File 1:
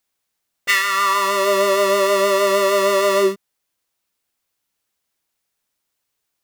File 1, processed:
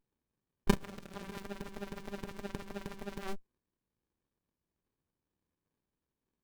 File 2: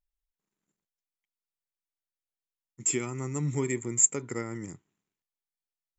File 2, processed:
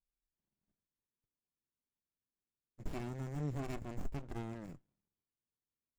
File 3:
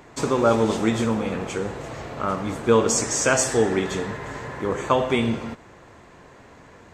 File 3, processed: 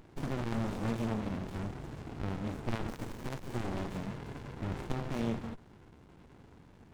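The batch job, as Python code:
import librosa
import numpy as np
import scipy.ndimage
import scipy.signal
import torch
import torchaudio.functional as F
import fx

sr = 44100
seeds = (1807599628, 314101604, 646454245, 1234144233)

y = fx.cheby_harmonics(x, sr, harmonics=(4,), levels_db=(-12,), full_scale_db=-2.5)
y = fx.running_max(y, sr, window=65)
y = y * 10.0 ** (-5.0 / 20.0)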